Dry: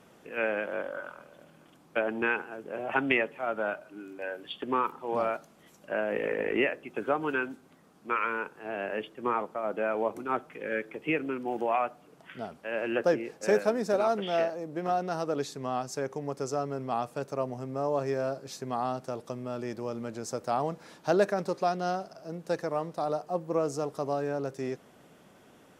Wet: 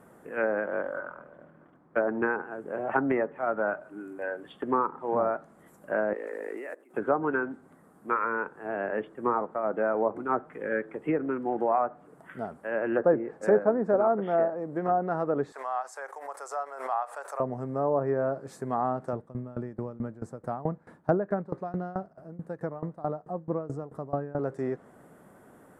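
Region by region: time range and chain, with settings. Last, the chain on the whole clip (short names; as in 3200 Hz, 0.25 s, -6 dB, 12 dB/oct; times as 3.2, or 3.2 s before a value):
0.99–2.22 expander -56 dBFS + LPF 2600 Hz + notch 810 Hz, Q 22
6.13–6.94 block floating point 5-bit + HPF 280 Hz 24 dB/oct + level quantiser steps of 20 dB
15.52–17.4 HPF 710 Hz 24 dB/oct + backwards sustainer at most 84 dB/s
19.13–24.39 tone controls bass +9 dB, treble -9 dB + dB-ramp tremolo decaying 4.6 Hz, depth 20 dB
whole clip: treble ducked by the level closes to 1300 Hz, closed at -24 dBFS; band shelf 3900 Hz -15.5 dB; gain +3 dB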